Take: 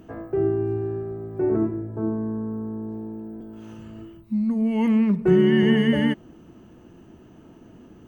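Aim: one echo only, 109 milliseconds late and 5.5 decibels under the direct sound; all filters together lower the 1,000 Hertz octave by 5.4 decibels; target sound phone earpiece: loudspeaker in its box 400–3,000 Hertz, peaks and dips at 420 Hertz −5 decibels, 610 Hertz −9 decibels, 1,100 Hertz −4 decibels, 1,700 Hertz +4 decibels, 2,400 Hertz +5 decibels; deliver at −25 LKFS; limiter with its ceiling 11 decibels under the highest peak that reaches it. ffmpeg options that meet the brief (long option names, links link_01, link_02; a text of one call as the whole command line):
ffmpeg -i in.wav -af "equalizer=frequency=1000:width_type=o:gain=-3.5,alimiter=limit=-18.5dB:level=0:latency=1,highpass=400,equalizer=frequency=420:width_type=q:width=4:gain=-5,equalizer=frequency=610:width_type=q:width=4:gain=-9,equalizer=frequency=1100:width_type=q:width=4:gain=-4,equalizer=frequency=1700:width_type=q:width=4:gain=4,equalizer=frequency=2400:width_type=q:width=4:gain=5,lowpass=frequency=3000:width=0.5412,lowpass=frequency=3000:width=1.3066,aecho=1:1:109:0.531,volume=9.5dB" out.wav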